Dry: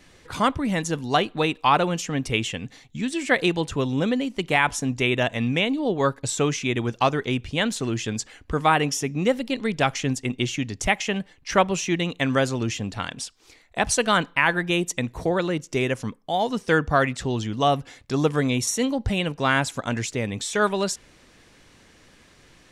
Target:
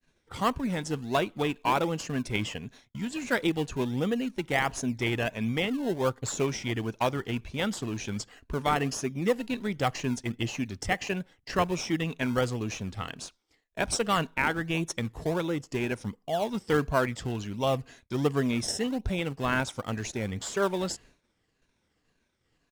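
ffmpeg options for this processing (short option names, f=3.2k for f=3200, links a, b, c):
-filter_complex "[0:a]afftfilt=real='re*pow(10,7/40*sin(2*PI*(1.5*log(max(b,1)*sr/1024/100)/log(2)-(-1.9)*(pts-256)/sr)))':imag='im*pow(10,7/40*sin(2*PI*(1.5*log(max(b,1)*sr/1024/100)/log(2)-(-1.9)*(pts-256)/sr)))':win_size=1024:overlap=0.75,asplit=2[a][b];[b]acrusher=samples=24:mix=1:aa=0.000001:lfo=1:lforange=24:lforate=1.4,volume=-10dB[c];[a][c]amix=inputs=2:normalize=0,asetrate=41625,aresample=44100,atempo=1.05946,agate=range=-33dB:threshold=-41dB:ratio=3:detection=peak,volume=-8dB"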